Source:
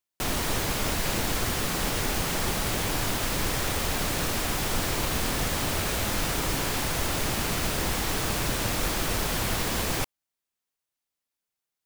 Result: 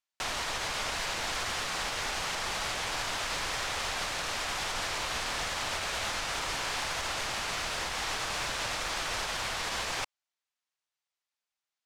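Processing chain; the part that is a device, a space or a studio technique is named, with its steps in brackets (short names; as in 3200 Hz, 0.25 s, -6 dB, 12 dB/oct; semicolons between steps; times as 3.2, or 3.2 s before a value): LPF 12000 Hz 12 dB/oct; DJ mixer with the lows and highs turned down (three-band isolator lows -19 dB, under 600 Hz, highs -14 dB, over 7600 Hz; limiter -24 dBFS, peak gain reduction 4.5 dB); low shelf 200 Hz +6.5 dB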